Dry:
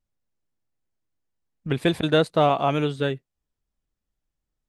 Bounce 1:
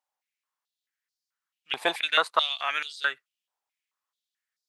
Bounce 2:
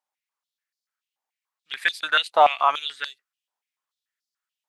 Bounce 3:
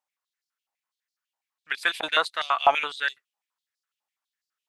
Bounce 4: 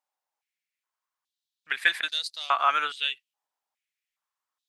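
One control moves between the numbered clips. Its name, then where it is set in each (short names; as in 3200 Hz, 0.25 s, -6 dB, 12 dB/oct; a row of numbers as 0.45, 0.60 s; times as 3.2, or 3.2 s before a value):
stepped high-pass, rate: 4.6, 6.9, 12, 2.4 Hz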